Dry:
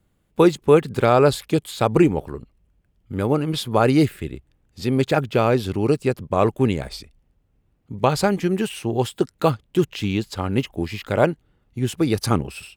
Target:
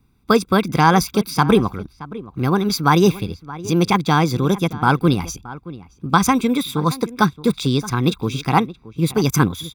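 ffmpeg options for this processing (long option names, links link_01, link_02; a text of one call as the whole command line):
ffmpeg -i in.wav -filter_complex "[0:a]aecho=1:1:1.1:0.85,asplit=2[link_01][link_02];[link_02]adelay=816.3,volume=-17dB,highshelf=frequency=4000:gain=-18.4[link_03];[link_01][link_03]amix=inputs=2:normalize=0,asetrate=57771,aresample=44100,volume=2dB" out.wav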